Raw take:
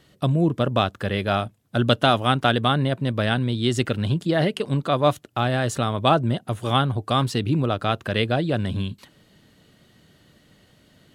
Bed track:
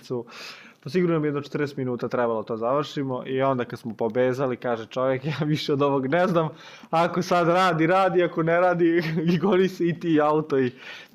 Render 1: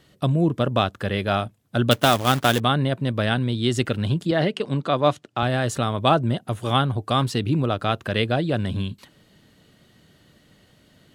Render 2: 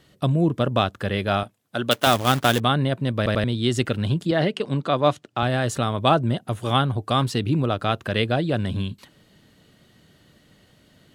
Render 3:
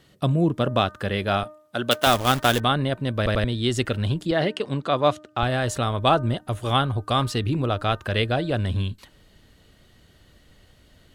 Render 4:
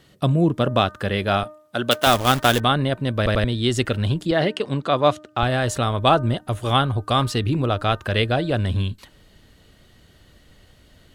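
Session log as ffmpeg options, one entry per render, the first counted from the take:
ffmpeg -i in.wav -filter_complex "[0:a]asettb=1/sr,asplit=3[link_01][link_02][link_03];[link_01]atrim=end=1.914[link_04];[link_02]atrim=start=1.91:end=2.6,asetpts=PTS-STARTPTS,afade=type=in:duration=0.004:curve=qsin,afade=type=out:start_time=0.686:duration=0.004:curve=qsin,acrusher=bits=2:mode=log:mix=0:aa=0.000001[link_05];[link_03]atrim=start=2.596[link_06];[link_04][link_05]acrossfade=duration=0.004:curve1=hsin:curve2=qsin[link_07];[link_07][link_06]acrossfade=duration=0.004:curve1=qsin:curve2=hsin,asettb=1/sr,asplit=3[link_08][link_09][link_10];[link_08]atrim=end=4.314[link_11];[link_09]atrim=start=4.31:end=5.43,asetpts=PTS-STARTPTS,afade=type=in:duration=0.004:curve=qsin,afade=type=out:start_time=1.116:duration=0.004:curve=qsin,highpass=120,lowpass=7100[link_12];[link_10]atrim=start=5.426[link_13];[link_11][link_12]acrossfade=duration=0.004:curve1=hsin:curve2=qsin[link_14];[link_14][link_13]acrossfade=duration=0.004:curve1=qsin:curve2=hsin" out.wav
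ffmpeg -i in.wav -filter_complex "[0:a]asettb=1/sr,asplit=3[link_01][link_02][link_03];[link_01]atrim=end=1.434[link_04];[link_02]atrim=start=1.43:end=2.07,asetpts=PTS-STARTPTS,afade=type=in:duration=0.004:curve=qsin,afade=type=out:start_time=0.636:duration=0.004:curve=qsin,highpass=frequency=410:poles=1[link_05];[link_03]atrim=start=2.066[link_06];[link_04][link_05]acrossfade=duration=0.004:curve1=hsin:curve2=qsin[link_07];[link_07][link_06]acrossfade=duration=0.004:curve1=qsin:curve2=hsin,asplit=4[link_08][link_09][link_10][link_11];[link_08]atrim=end=3.262[link_12];[link_09]atrim=start=3.168:end=3.262[link_13];[link_10]atrim=start=3.168:end=3.262[link_14];[link_11]atrim=start=3.438[link_15];[link_12][link_13]acrossfade=duration=0.004:curve1=hsin:curve2=hsin[link_16];[link_16][link_14]acrossfade=duration=0.004:curve1=hsin:curve2=hsin[link_17];[link_17][link_15]acrossfade=duration=0.004:curve1=hsin:curve2=hsin" out.wav
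ffmpeg -i in.wav -af "bandreject=frequency=305.4:width_type=h:width=4,bandreject=frequency=610.8:width_type=h:width=4,bandreject=frequency=916.2:width_type=h:width=4,bandreject=frequency=1221.6:width_type=h:width=4,bandreject=frequency=1527:width_type=h:width=4,bandreject=frequency=1832.4:width_type=h:width=4,asubboost=boost=7.5:cutoff=56" out.wav
ffmpeg -i in.wav -af "volume=2.5dB,alimiter=limit=-2dB:level=0:latency=1" out.wav

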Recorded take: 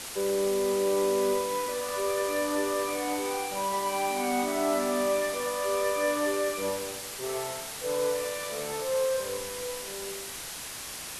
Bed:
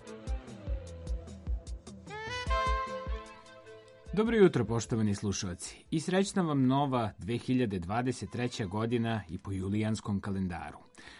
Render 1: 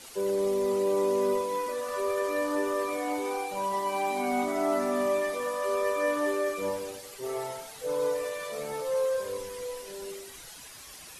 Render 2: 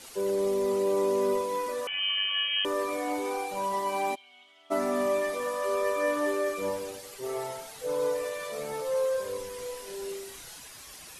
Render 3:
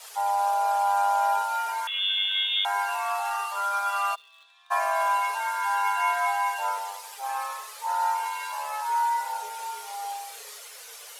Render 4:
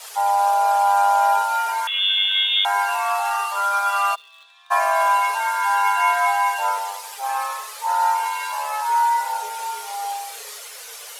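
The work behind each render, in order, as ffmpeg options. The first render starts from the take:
ffmpeg -i in.wav -af "afftdn=noise_reduction=11:noise_floor=-39" out.wav
ffmpeg -i in.wav -filter_complex "[0:a]asettb=1/sr,asplit=3[link_01][link_02][link_03];[link_01]atrim=end=1.874[link_04];[link_02]atrim=start=1.87:end=2.65,asetpts=PTS-STARTPTS,afade=type=in:duration=0.004:curve=qsin,afade=type=out:start_time=0.776:duration=0.004:curve=qsin,lowpass=frequency=3000:width_type=q:width=0.5098,lowpass=frequency=3000:width_type=q:width=0.6013,lowpass=frequency=3000:width_type=q:width=0.9,lowpass=frequency=3000:width_type=q:width=2.563,afreqshift=-3500[link_05];[link_03]atrim=start=2.646[link_06];[link_04][link_05]acrossfade=duration=0.004:curve1=hsin:curve2=qsin[link_07];[link_07][link_06]acrossfade=duration=0.004:curve1=qsin:curve2=hsin,asplit=3[link_08][link_09][link_10];[link_08]afade=type=out:start_time=4.14:duration=0.02[link_11];[link_09]bandpass=frequency=3100:width_type=q:width=12,afade=type=in:start_time=4.14:duration=0.02,afade=type=out:start_time=4.7:duration=0.02[link_12];[link_10]afade=type=in:start_time=4.7:duration=0.02[link_13];[link_11][link_12][link_13]amix=inputs=3:normalize=0,asettb=1/sr,asplit=3[link_14][link_15][link_16];[link_14]atrim=end=9.554[link_17];[link_15]atrim=start=9.55:end=10.59,asetpts=PTS-STARTPTS,afade=type=in:duration=0.004:curve=qsin,afade=type=out:start_time=1.036:duration=0.004:curve=qsin,asplit=2[link_18][link_19];[link_19]adelay=33,volume=-6dB[link_20];[link_18][link_20]amix=inputs=2:normalize=0,atrim=end_sample=45864[link_21];[link_16]atrim=start=10.586[link_22];[link_17][link_21]acrossfade=duration=0.004:curve1=hsin:curve2=qsin[link_23];[link_23][link_22]acrossfade=duration=0.004:curve1=qsin:curve2=hsin" out.wav
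ffmpeg -i in.wav -filter_complex "[0:a]asplit=2[link_01][link_02];[link_02]acrusher=bits=7:mix=0:aa=0.000001,volume=-9dB[link_03];[link_01][link_03]amix=inputs=2:normalize=0,afreqshift=410" out.wav
ffmpeg -i in.wav -af "volume=6.5dB" out.wav

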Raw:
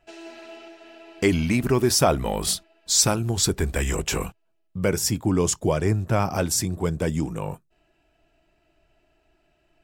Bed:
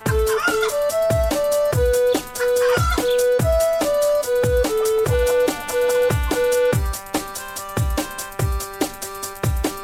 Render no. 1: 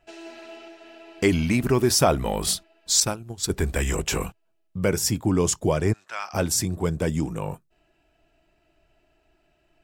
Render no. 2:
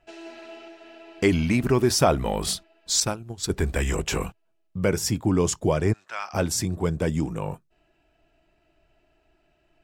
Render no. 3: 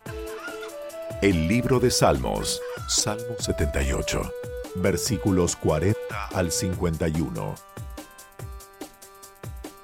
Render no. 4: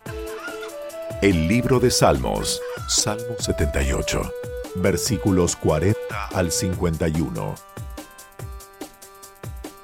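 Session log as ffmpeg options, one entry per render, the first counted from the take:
ffmpeg -i in.wav -filter_complex "[0:a]asettb=1/sr,asplit=3[link_01][link_02][link_03];[link_01]atrim=end=3.004[link_04];[link_02]atrim=start=3:end=3.5,asetpts=PTS-STARTPTS,afade=type=in:duration=0.004:curve=qsin,afade=type=out:start_time=0.496:duration=0.004:curve=qsin,agate=range=-33dB:threshold=-16dB:ratio=3:release=100:detection=peak[link_05];[link_03]atrim=start=3.496[link_06];[link_04][link_05]acrossfade=duration=0.004:curve1=hsin:curve2=qsin[link_07];[link_07][link_06]acrossfade=duration=0.004:curve1=qsin:curve2=hsin,asplit=3[link_08][link_09][link_10];[link_08]afade=type=out:start_time=5.92:duration=0.02[link_11];[link_09]asuperpass=centerf=3100:order=4:qfactor=0.57,afade=type=in:start_time=5.92:duration=0.02,afade=type=out:start_time=6.33:duration=0.02[link_12];[link_10]afade=type=in:start_time=6.33:duration=0.02[link_13];[link_11][link_12][link_13]amix=inputs=3:normalize=0" out.wav
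ffmpeg -i in.wav -af "highshelf=frequency=7400:gain=-7" out.wav
ffmpeg -i in.wav -i bed.wav -filter_complex "[1:a]volume=-16.5dB[link_01];[0:a][link_01]amix=inputs=2:normalize=0" out.wav
ffmpeg -i in.wav -af "volume=3dB" out.wav

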